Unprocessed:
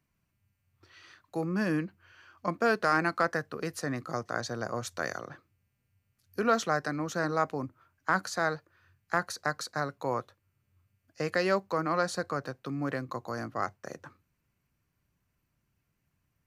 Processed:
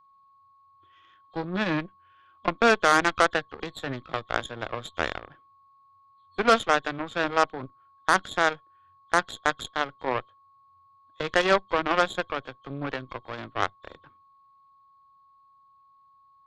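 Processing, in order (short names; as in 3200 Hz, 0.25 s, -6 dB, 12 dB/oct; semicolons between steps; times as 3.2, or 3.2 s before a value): nonlinear frequency compression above 3000 Hz 4:1; added harmonics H 5 -37 dB, 6 -21 dB, 7 -18 dB, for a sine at -13 dBFS; whine 1100 Hz -63 dBFS; gain +6.5 dB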